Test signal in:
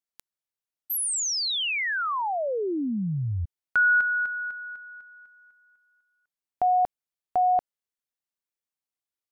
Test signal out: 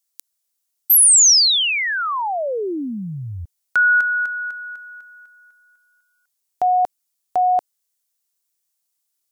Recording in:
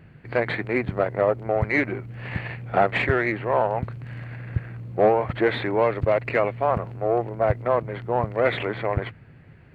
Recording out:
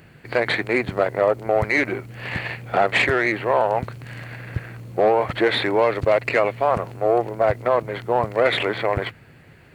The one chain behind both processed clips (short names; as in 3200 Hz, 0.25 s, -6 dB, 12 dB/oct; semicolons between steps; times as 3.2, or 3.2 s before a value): tone controls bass -7 dB, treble +14 dB; limiter -13 dBFS; gain +5 dB